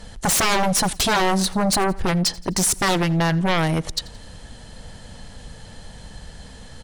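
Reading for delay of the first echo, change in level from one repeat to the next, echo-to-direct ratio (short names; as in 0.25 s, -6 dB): 85 ms, -6.0 dB, -21.0 dB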